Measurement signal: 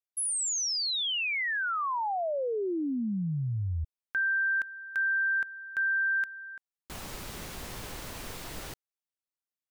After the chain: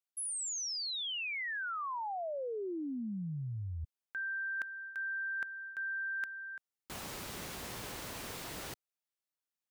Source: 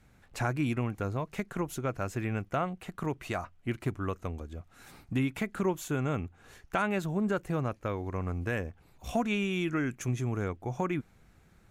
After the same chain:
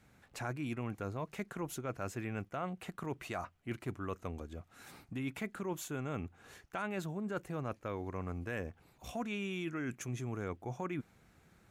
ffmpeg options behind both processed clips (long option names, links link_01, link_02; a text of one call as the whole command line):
ffmpeg -i in.wav -af "highpass=frequency=110:poles=1,areverse,acompressor=threshold=-38dB:ratio=5:attack=65:release=105:knee=6:detection=rms,areverse,volume=-1dB" out.wav